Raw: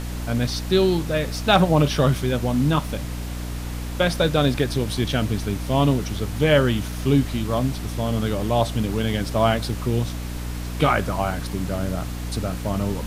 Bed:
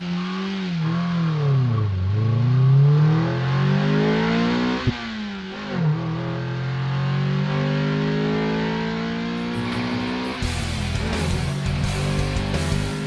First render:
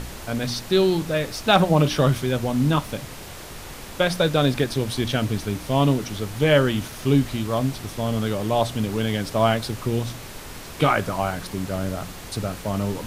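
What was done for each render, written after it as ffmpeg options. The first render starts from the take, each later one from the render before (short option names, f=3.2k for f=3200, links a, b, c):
-af "bandreject=f=60:t=h:w=4,bandreject=f=120:t=h:w=4,bandreject=f=180:t=h:w=4,bandreject=f=240:t=h:w=4,bandreject=f=300:t=h:w=4"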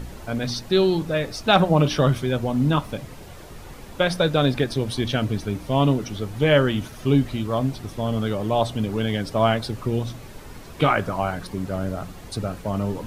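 -af "afftdn=nr=9:nf=-38"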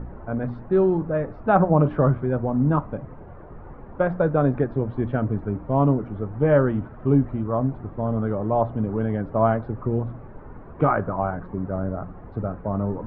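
-af "lowpass=f=1.4k:w=0.5412,lowpass=f=1.4k:w=1.3066"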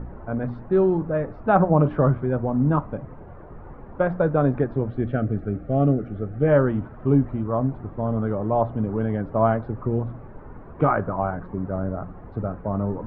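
-filter_complex "[0:a]asettb=1/sr,asplit=3[a][b][c];[a]atrim=end=4.904[d];[b]atrim=start=4.9:end=6.48,asetpts=PTS-STARTPTS,afade=t=in:d=0.004:c=qsin,afade=t=out:st=1.576:d=0.004:c=qsin,asuperstop=centerf=970:order=4:qfactor=2.3[e];[c]atrim=start=6.476[f];[d][e]acrossfade=d=0.004:c1=hsin:c2=qsin[g];[g][f]acrossfade=d=0.004:c1=qsin:c2=hsin"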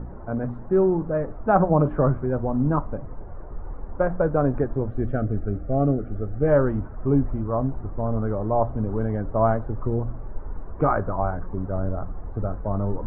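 -af "lowpass=1.6k,asubboost=boost=5:cutoff=62"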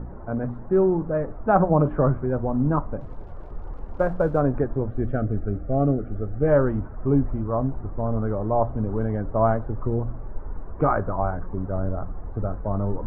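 -filter_complex "[0:a]asettb=1/sr,asplit=3[a][b][c];[a]atrim=end=2.994[d];[b]atrim=start=2.99:end=4.4,asetpts=PTS-STARTPTS,afade=t=in:d=0.004:c=qsin,afade=t=out:st=1.406:d=0.004:c=qsin,aeval=exprs='sgn(val(0))*max(abs(val(0))-0.002,0)':c=same[e];[c]atrim=start=4.396[f];[d][e]acrossfade=d=0.004:c1=hsin:c2=qsin[g];[g][f]acrossfade=d=0.004:c1=qsin:c2=hsin"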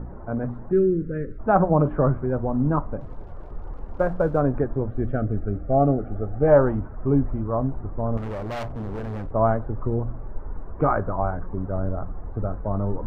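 -filter_complex "[0:a]asplit=3[a][b][c];[a]afade=t=out:st=0.71:d=0.02[d];[b]asuperstop=centerf=850:order=8:qfactor=0.86,afade=t=in:st=0.71:d=0.02,afade=t=out:st=1.38:d=0.02[e];[c]afade=t=in:st=1.38:d=0.02[f];[d][e][f]amix=inputs=3:normalize=0,asettb=1/sr,asplit=3[g][h][i];[g]atrim=end=5.704[j];[h]atrim=start=5.7:end=6.75,asetpts=PTS-STARTPTS,afade=t=in:d=0.004:c=qsin,afade=t=out:st=1.046:d=0.004:c=qsin,equalizer=f=790:w=1.8:g=8.5[k];[i]atrim=start=6.746[l];[j][k]acrossfade=d=0.004:c1=hsin:c2=qsin[m];[m][l]acrossfade=d=0.004:c1=qsin:c2=hsin,asettb=1/sr,asplit=3[n][o][p];[n]atrim=end=8.174[q];[o]atrim=start=8.17:end=9.33,asetpts=PTS-STARTPTS,afade=t=in:d=0.004:c=qsin,afade=t=out:st=1.156:d=0.004:c=qsin,volume=28dB,asoftclip=hard,volume=-28dB[r];[p]atrim=start=9.326[s];[q][r]acrossfade=d=0.004:c1=hsin:c2=qsin[t];[t][s]acrossfade=d=0.004:c1=qsin:c2=hsin"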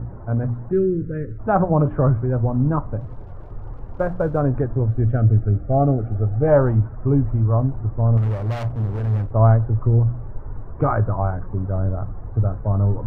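-af "equalizer=f=110:t=o:w=0.45:g=14.5"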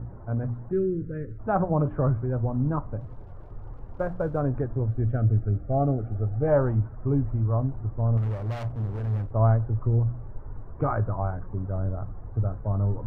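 -af "volume=-6.5dB"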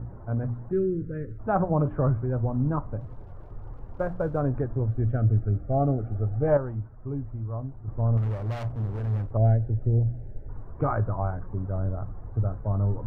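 -filter_complex "[0:a]asettb=1/sr,asplit=3[a][b][c];[a]atrim=end=9.374[d];[b]atrim=start=9.37:end=10.49,asetpts=PTS-STARTPTS,afade=t=in:d=0.004:c=qsin,afade=t=out:st=1.116:d=0.004:c=qsin,asuperstop=centerf=1100:order=4:qfactor=1.1[e];[c]atrim=start=10.486[f];[d][e]acrossfade=d=0.004:c1=hsin:c2=qsin[g];[g][f]acrossfade=d=0.004:c1=qsin:c2=hsin,asplit=3[h][i][j];[h]atrim=end=6.572[k];[i]atrim=start=6.568:end=7.882,asetpts=PTS-STARTPTS,volume=-8dB[l];[j]atrim=start=7.878[m];[k][l]acrossfade=d=0.004:c1=hsin:c2=hsin[n];[n][m]acrossfade=d=0.004:c1=hsin:c2=hsin"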